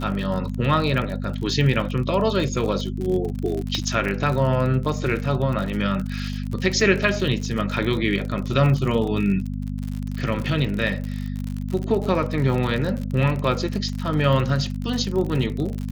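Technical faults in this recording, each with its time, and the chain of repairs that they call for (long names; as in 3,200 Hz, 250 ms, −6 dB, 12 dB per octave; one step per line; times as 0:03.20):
surface crackle 57 per second −27 dBFS
mains hum 50 Hz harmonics 5 −28 dBFS
0:03.75: click −12 dBFS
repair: click removal
hum removal 50 Hz, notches 5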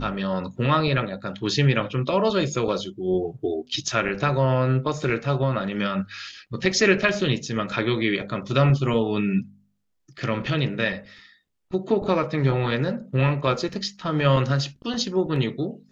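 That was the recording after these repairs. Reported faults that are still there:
none of them is left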